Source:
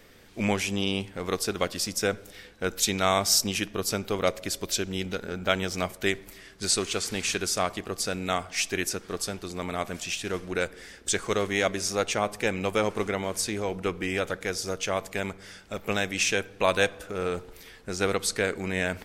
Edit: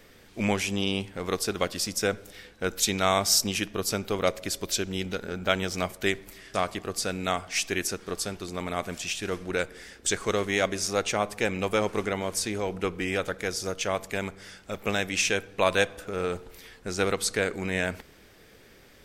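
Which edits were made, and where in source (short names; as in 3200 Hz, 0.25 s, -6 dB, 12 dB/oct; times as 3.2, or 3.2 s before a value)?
6.54–7.56 cut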